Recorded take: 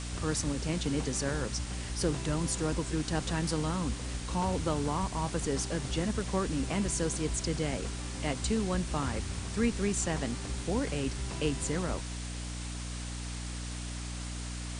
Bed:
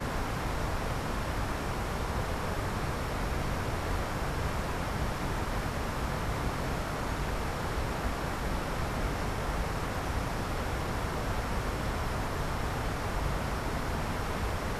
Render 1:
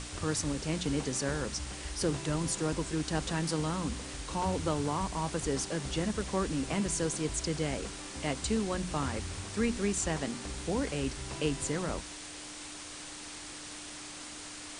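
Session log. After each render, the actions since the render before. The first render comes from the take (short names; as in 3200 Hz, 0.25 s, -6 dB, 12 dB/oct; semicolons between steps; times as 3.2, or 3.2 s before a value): notches 60/120/180/240 Hz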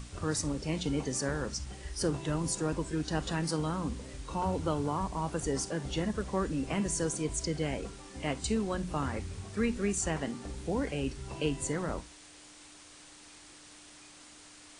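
noise print and reduce 9 dB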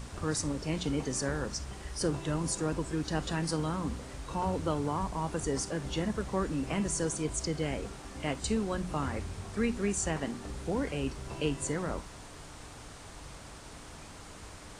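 add bed -16.5 dB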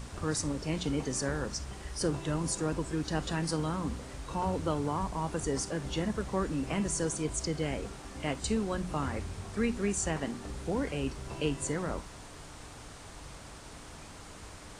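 nothing audible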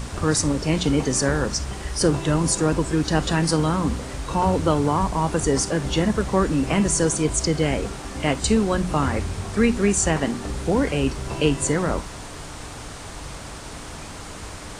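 gain +11.5 dB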